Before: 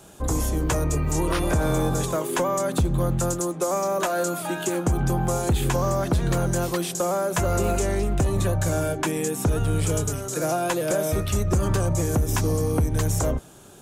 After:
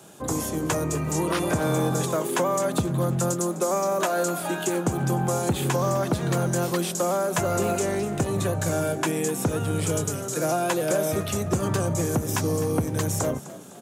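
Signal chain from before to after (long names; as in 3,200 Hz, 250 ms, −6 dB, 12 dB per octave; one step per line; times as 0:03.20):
high-pass filter 110 Hz 24 dB per octave
on a send: echo with shifted repeats 254 ms, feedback 47%, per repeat +41 Hz, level −16.5 dB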